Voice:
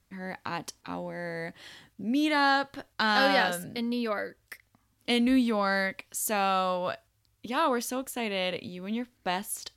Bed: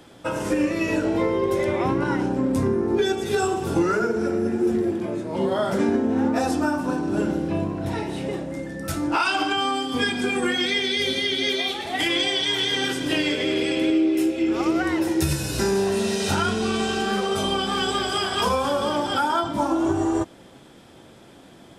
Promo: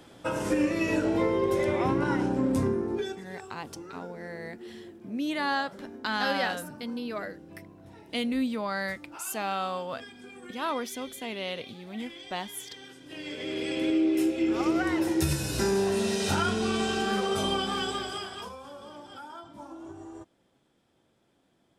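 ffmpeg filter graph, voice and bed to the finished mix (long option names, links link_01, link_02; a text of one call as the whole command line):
ffmpeg -i stem1.wav -i stem2.wav -filter_complex "[0:a]adelay=3050,volume=-4.5dB[link_01];[1:a]volume=15.5dB,afade=type=out:start_time=2.56:duration=0.72:silence=0.105925,afade=type=in:start_time=13.08:duration=1.02:silence=0.112202,afade=type=out:start_time=17.51:duration=1.01:silence=0.133352[link_02];[link_01][link_02]amix=inputs=2:normalize=0" out.wav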